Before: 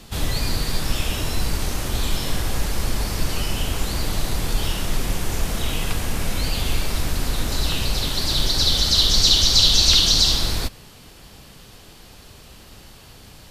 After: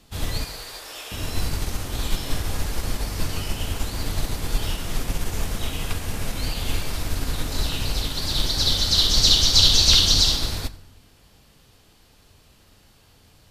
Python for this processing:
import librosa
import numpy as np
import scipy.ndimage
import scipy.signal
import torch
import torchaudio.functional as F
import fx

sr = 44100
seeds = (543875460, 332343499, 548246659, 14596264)

y = fx.highpass(x, sr, hz=410.0, slope=24, at=(0.44, 1.12))
y = fx.rev_fdn(y, sr, rt60_s=1.1, lf_ratio=1.45, hf_ratio=0.7, size_ms=66.0, drr_db=9.5)
y = fx.upward_expand(y, sr, threshold_db=-34.0, expansion=1.5)